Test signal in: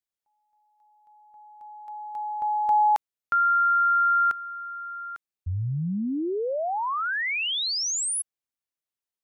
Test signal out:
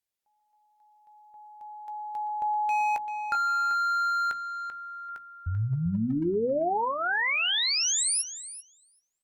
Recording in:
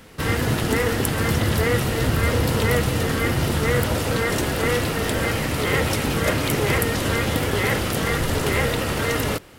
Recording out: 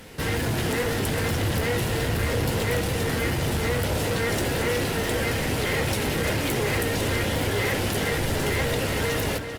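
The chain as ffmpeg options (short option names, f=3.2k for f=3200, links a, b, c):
-filter_complex "[0:a]equalizer=f=1.2k:w=5.8:g=-10,bandreject=f=60:t=h:w=6,bandreject=f=120:t=h:w=6,bandreject=f=180:t=h:w=6,bandreject=f=240:t=h:w=6,bandreject=f=300:t=h:w=6,asplit=2[a][b];[b]acompressor=threshold=-31dB:ratio=20:attack=3:release=428:knee=6:detection=peak,volume=-3dB[c];[a][c]amix=inputs=2:normalize=0,asoftclip=type=hard:threshold=-20.5dB,asplit=2[d][e];[e]adelay=17,volume=-12.5dB[f];[d][f]amix=inputs=2:normalize=0,asplit=2[g][h];[h]adelay=389,lowpass=f=4.5k:p=1,volume=-8dB,asplit=2[i][j];[j]adelay=389,lowpass=f=4.5k:p=1,volume=0.16,asplit=2[k][l];[l]adelay=389,lowpass=f=4.5k:p=1,volume=0.16[m];[i][k][m]amix=inputs=3:normalize=0[n];[g][n]amix=inputs=2:normalize=0,volume=-2dB" -ar 48000 -c:a libopus -b:a 48k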